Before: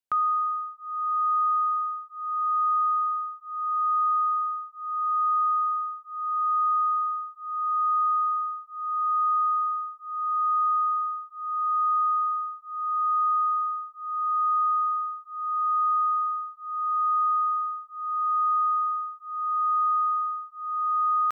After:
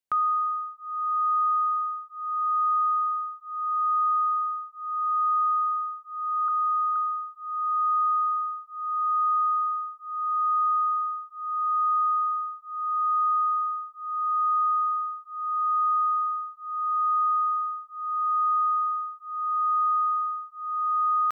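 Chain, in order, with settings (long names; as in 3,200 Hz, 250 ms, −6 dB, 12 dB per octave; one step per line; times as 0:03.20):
0:06.48–0:06.96: Butterworth high-pass 1,200 Hz 96 dB per octave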